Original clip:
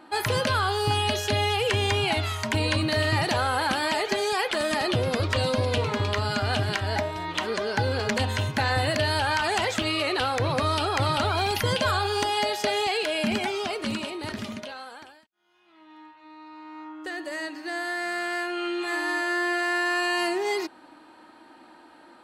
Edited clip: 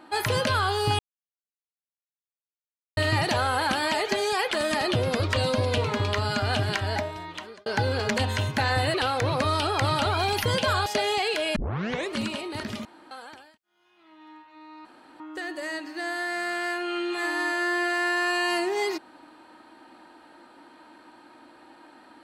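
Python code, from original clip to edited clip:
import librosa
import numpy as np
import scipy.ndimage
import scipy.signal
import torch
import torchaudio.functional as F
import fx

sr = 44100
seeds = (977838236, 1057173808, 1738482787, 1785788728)

y = fx.edit(x, sr, fx.silence(start_s=0.99, length_s=1.98),
    fx.fade_out_span(start_s=6.85, length_s=0.81),
    fx.cut(start_s=8.94, length_s=1.18),
    fx.cut(start_s=12.04, length_s=0.51),
    fx.tape_start(start_s=13.25, length_s=0.57),
    fx.room_tone_fill(start_s=14.54, length_s=0.26),
    fx.room_tone_fill(start_s=16.54, length_s=0.35), tone=tone)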